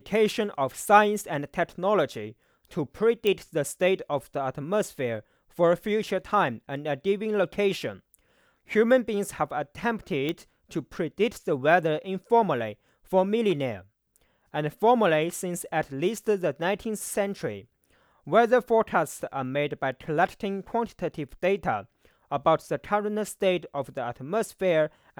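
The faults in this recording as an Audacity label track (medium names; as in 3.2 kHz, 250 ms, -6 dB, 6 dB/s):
3.270000	3.270000	pop -13 dBFS
10.290000	10.290000	pop -16 dBFS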